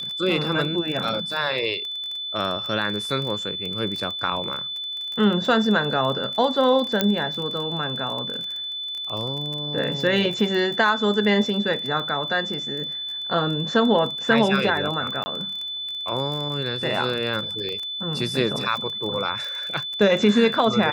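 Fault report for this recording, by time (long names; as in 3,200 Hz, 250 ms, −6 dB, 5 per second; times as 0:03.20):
surface crackle 21 per second −27 dBFS
whistle 3,500 Hz −28 dBFS
0:07.01: click −5 dBFS
0:15.24–0:15.26: drop-out 20 ms
0:17.69: click −21 dBFS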